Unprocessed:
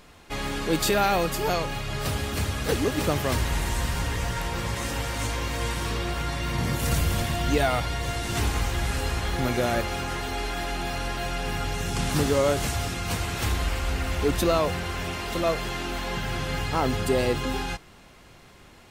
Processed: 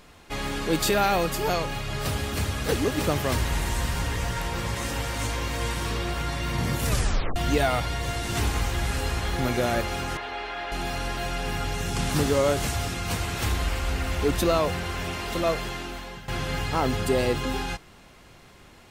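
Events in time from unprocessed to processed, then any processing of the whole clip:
0:06.87: tape stop 0.49 s
0:10.17–0:10.72: three-way crossover with the lows and the highs turned down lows −15 dB, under 400 Hz, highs −24 dB, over 4,000 Hz
0:15.54–0:16.28: fade out, to −15 dB

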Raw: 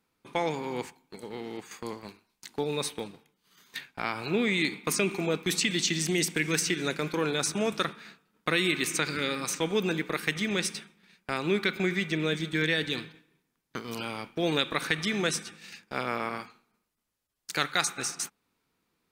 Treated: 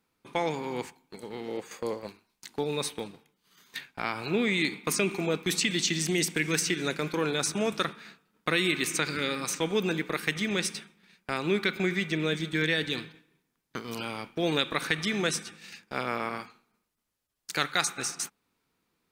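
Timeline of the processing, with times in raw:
0:01.48–0:02.07: parametric band 530 Hz +13 dB 0.54 octaves

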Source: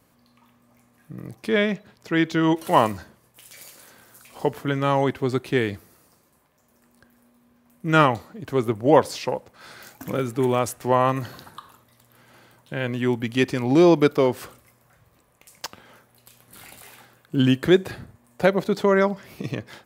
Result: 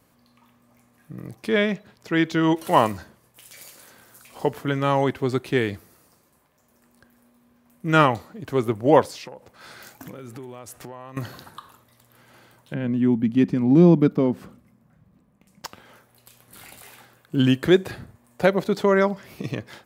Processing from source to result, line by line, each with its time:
0:09.05–0:11.17: downward compressor 12 to 1, threshold −34 dBFS
0:12.74–0:15.65: drawn EQ curve 130 Hz 0 dB, 190 Hz +13 dB, 390 Hz −4 dB, 10,000 Hz −16 dB

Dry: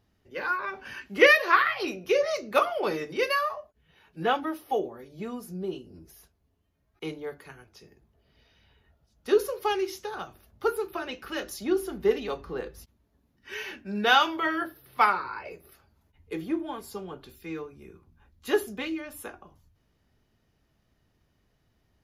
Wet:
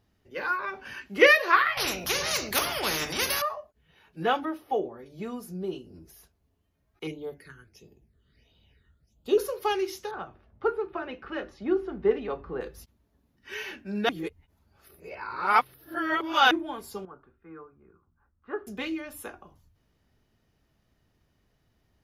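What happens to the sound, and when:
0:01.77–0:03.42: every bin compressed towards the loudest bin 4 to 1
0:04.45–0:05.06: high-shelf EQ 4,300 Hz −11 dB
0:07.07–0:09.38: all-pass phaser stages 8, 1.5 Hz, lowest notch 690–1,800 Hz
0:10.11–0:12.61: low-pass filter 2,000 Hz
0:14.09–0:16.51: reverse
0:17.05–0:18.67: transistor ladder low-pass 1,500 Hz, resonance 60%

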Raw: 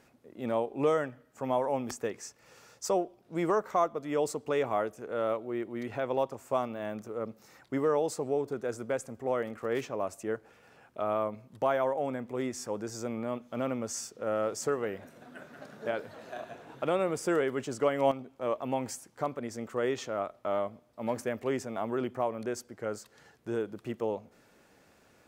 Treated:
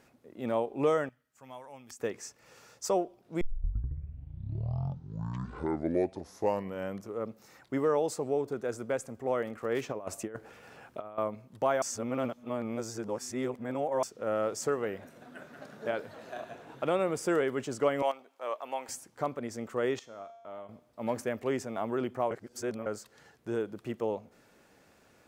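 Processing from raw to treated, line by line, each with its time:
0:01.09–0:02.00: guitar amp tone stack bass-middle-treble 5-5-5
0:03.41: tape start 3.85 s
0:09.89–0:11.18: compressor whose output falls as the input rises −37 dBFS, ratio −0.5
0:11.82–0:14.03: reverse
0:18.02–0:18.89: high-pass filter 670 Hz
0:19.99–0:20.69: tuned comb filter 230 Hz, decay 1.1 s, mix 80%
0:22.31–0:22.86: reverse

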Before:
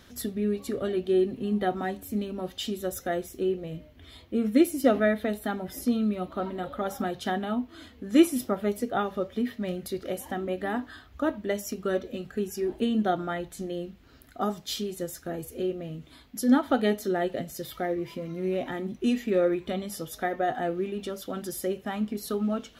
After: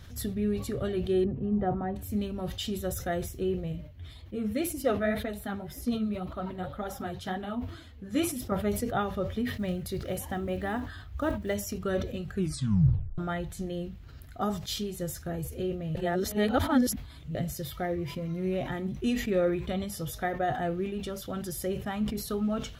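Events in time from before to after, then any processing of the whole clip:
0:01.24–0:01.96: low-pass filter 1,100 Hz
0:03.72–0:08.52: flanger 1.9 Hz, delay 2.2 ms, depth 9 ms, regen +28%
0:09.57–0:11.56: one scale factor per block 7 bits
0:12.34: tape stop 0.84 s
0:15.95–0:17.35: reverse
whole clip: low shelf with overshoot 170 Hz +11.5 dB, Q 1.5; level that may fall only so fast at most 87 dB per second; level −1.5 dB

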